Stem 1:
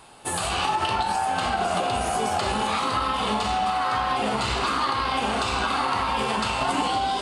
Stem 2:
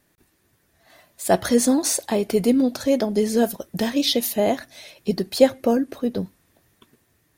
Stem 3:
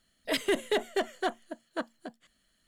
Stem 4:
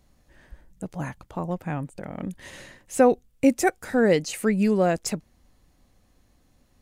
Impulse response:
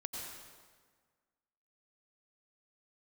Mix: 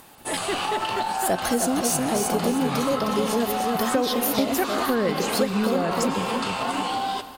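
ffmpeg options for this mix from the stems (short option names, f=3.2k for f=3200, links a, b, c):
-filter_complex "[0:a]highpass=140,volume=-4dB,asplit=3[a][b][c];[b]volume=-9.5dB[d];[c]volume=-14.5dB[e];[1:a]highshelf=f=10k:g=8.5,acompressor=mode=upward:threshold=-40dB:ratio=2.5,volume=-2dB,asplit=2[f][g];[g]volume=-5.5dB[h];[2:a]volume=-1.5dB[i];[3:a]adelay=950,volume=-1.5dB,asplit=2[j][k];[k]volume=-3.5dB[l];[4:a]atrim=start_sample=2205[m];[d][l]amix=inputs=2:normalize=0[n];[n][m]afir=irnorm=-1:irlink=0[o];[e][h]amix=inputs=2:normalize=0,aecho=0:1:310|620|930|1240|1550:1|0.39|0.152|0.0593|0.0231[p];[a][f][i][j][o][p]amix=inputs=6:normalize=0,acompressor=threshold=-19dB:ratio=6"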